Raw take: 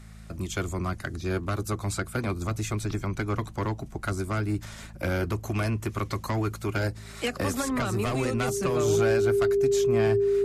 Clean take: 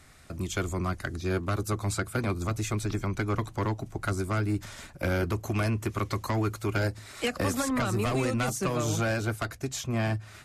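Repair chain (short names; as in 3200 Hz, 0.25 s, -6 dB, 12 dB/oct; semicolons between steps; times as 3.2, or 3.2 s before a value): de-hum 54 Hz, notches 4; notch 400 Hz, Q 30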